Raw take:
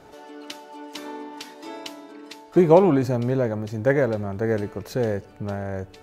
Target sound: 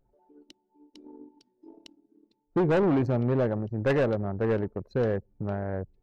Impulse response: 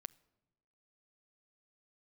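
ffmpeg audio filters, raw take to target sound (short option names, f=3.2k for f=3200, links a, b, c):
-filter_complex "[0:a]asettb=1/sr,asplit=3[a][b][c];[a]atrim=end=0.434[d];[b]atrim=start=0.43:end=2.91,asetpts=PTS-STARTPTS,afade=t=in:d=0.004:c=qsin,afade=t=out:st=2.476:d=0.004:c=qsin,equalizer=f=1.5k:t=o:w=2.2:g=-10[e];[c]atrim=start=2.906[f];[d][e]acrossfade=d=0.004:c1=hsin:c2=qsin[g];[g][f]acrossfade=d=0.004:c1=qsin:c2=hsin,volume=18.5dB,asoftclip=hard,volume=-18.5dB,anlmdn=39.8,volume=-1.5dB"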